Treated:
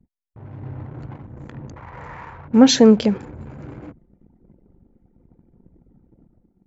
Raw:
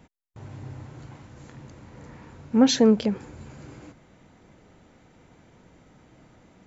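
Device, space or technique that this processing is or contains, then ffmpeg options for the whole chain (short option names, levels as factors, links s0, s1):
voice memo with heavy noise removal: -filter_complex "[0:a]asettb=1/sr,asplit=3[s0][s1][s2];[s0]atrim=end=1.764[s3];[s1]atrim=start=1.76:end=2.48,asetpts=PTS-STARTPTS,afade=t=in:d=0.004:c=qsin,afade=t=out:st=0.716:d=0.004:c=qsin,equalizer=f=250:t=o:w=1:g=-11,equalizer=f=1000:t=o:w=1:g=9,equalizer=f=2000:t=o:w=1:g=6,equalizer=f=4000:t=o:w=1:g=-3[s4];[s2]atrim=start=2.476[s5];[s3][s4]acrossfade=d=0.004:c1=hsin:c2=qsin[s6];[s6][s5]acrossfade=d=0.004:c1=qsin:c2=hsin,anlmdn=0.0251,dynaudnorm=f=200:g=7:m=2.51,volume=1.12"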